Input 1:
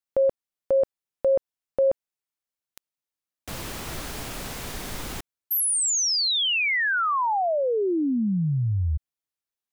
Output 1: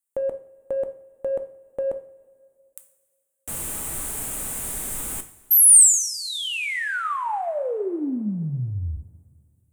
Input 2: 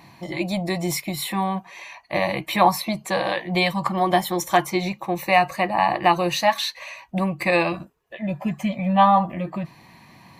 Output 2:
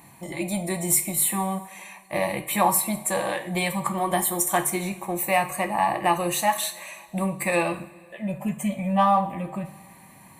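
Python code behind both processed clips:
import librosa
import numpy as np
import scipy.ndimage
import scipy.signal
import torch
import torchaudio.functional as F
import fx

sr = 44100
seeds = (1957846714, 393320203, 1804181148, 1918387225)

p1 = fx.high_shelf_res(x, sr, hz=6600.0, db=10.5, q=3.0)
p2 = 10.0 ** (-19.5 / 20.0) * np.tanh(p1 / 10.0 ** (-19.5 / 20.0))
p3 = p1 + (p2 * 10.0 ** (-12.0 / 20.0))
p4 = fx.rev_double_slope(p3, sr, seeds[0], early_s=0.44, late_s=2.3, knee_db=-18, drr_db=7.0)
y = p4 * 10.0 ** (-5.0 / 20.0)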